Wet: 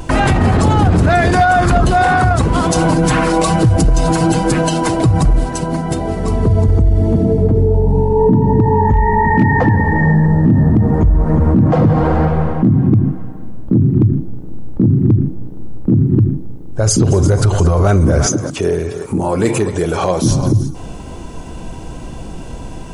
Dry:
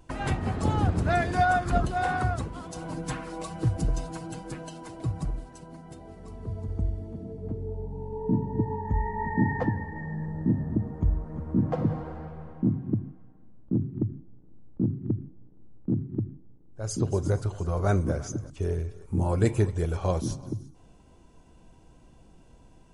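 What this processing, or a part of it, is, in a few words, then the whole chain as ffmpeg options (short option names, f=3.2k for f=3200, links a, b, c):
loud club master: -filter_complex "[0:a]acompressor=threshold=-29dB:ratio=1.5,asoftclip=type=hard:threshold=-19.5dB,alimiter=level_in=30dB:limit=-1dB:release=50:level=0:latency=1,asettb=1/sr,asplit=3[a][b][c];[a]atrim=end=18.264[d];[b]atrim=start=18.26:end=20.24,asetpts=PTS-STARTPTS,afade=t=in:d=0.004:c=qsin,afade=t=out:st=1.976:d=0.004:c=qsin,highpass=190[e];[c]atrim=start=20.236[f];[d][e]acrossfade=d=0.004:c1=hsin:c2=qsin[g];[g][f]acrossfade=d=0.004:c1=qsin:c2=hsin,volume=-3.5dB"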